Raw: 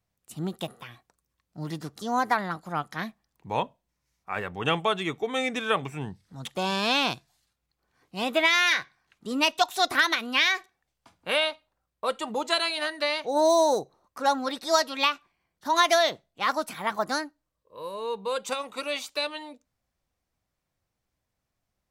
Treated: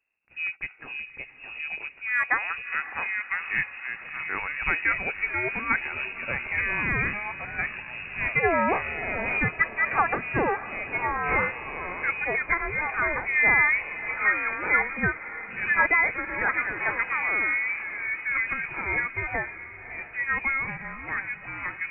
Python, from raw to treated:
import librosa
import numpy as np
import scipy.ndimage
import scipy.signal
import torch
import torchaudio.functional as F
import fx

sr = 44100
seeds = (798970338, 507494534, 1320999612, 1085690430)

y = fx.echo_pitch(x, sr, ms=403, semitones=-4, count=2, db_per_echo=-6.0)
y = fx.freq_invert(y, sr, carrier_hz=2700)
y = fx.echo_diffused(y, sr, ms=592, feedback_pct=57, wet_db=-14.0)